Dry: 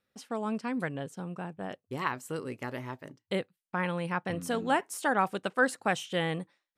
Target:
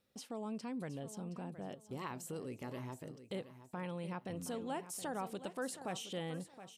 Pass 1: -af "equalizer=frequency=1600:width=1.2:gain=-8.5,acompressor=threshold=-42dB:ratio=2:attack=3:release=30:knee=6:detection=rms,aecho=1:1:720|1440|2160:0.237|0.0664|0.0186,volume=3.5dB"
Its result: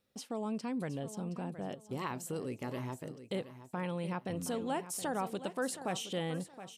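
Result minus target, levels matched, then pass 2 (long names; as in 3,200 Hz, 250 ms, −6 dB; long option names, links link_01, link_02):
downward compressor: peak gain reduction −5 dB
-af "equalizer=frequency=1600:width=1.2:gain=-8.5,acompressor=threshold=-52.5dB:ratio=2:attack=3:release=30:knee=6:detection=rms,aecho=1:1:720|1440|2160:0.237|0.0664|0.0186,volume=3.5dB"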